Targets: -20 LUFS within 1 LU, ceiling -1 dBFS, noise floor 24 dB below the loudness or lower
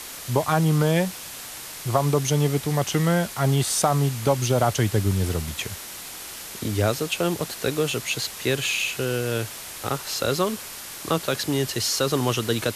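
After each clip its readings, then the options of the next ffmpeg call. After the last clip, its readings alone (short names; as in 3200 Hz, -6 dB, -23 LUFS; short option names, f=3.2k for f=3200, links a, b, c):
noise floor -38 dBFS; noise floor target -48 dBFS; loudness -24.0 LUFS; peak -6.5 dBFS; loudness target -20.0 LUFS
-> -af "afftdn=nr=10:nf=-38"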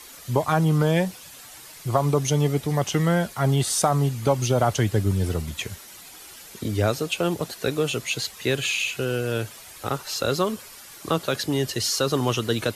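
noise floor -44 dBFS; noise floor target -48 dBFS
-> -af "afftdn=nr=6:nf=-44"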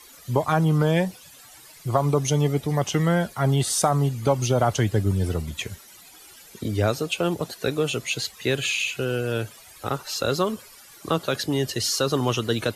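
noise floor -48 dBFS; loudness -24.0 LUFS; peak -7.0 dBFS; loudness target -20.0 LUFS
-> -af "volume=4dB"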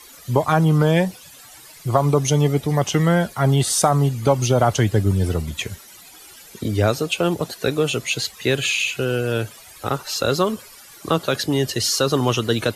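loudness -20.0 LUFS; peak -3.0 dBFS; noise floor -44 dBFS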